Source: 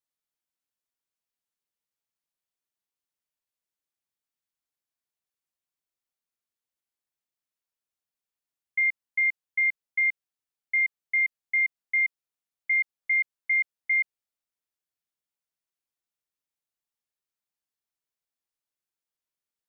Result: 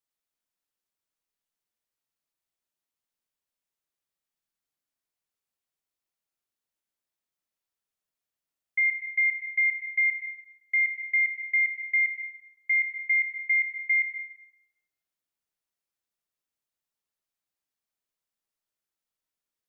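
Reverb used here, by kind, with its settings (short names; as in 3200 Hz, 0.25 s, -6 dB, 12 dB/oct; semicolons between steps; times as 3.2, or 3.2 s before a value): digital reverb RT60 1.5 s, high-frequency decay 0.3×, pre-delay 70 ms, DRR 4 dB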